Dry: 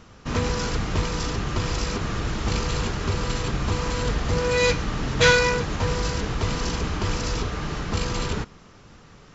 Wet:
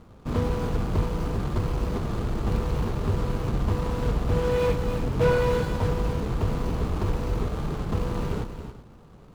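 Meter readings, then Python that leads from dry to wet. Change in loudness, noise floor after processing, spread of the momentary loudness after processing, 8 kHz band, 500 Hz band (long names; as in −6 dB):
−2.5 dB, −49 dBFS, 6 LU, can't be measured, −1.0 dB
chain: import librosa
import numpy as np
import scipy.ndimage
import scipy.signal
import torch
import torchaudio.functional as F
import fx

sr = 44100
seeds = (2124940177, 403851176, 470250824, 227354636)

y = scipy.signal.medfilt(x, 25)
y = fx.echo_multitap(y, sr, ms=(275, 382), db=(-10.0, -18.0))
y = fx.slew_limit(y, sr, full_power_hz=89.0)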